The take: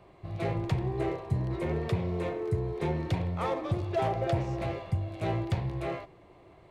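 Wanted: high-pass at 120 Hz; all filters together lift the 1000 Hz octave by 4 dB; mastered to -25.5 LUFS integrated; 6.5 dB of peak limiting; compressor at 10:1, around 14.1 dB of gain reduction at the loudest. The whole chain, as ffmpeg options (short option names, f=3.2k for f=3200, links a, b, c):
-af "highpass=120,equalizer=f=1k:t=o:g=5.5,acompressor=threshold=-37dB:ratio=10,volume=17dB,alimiter=limit=-16dB:level=0:latency=1"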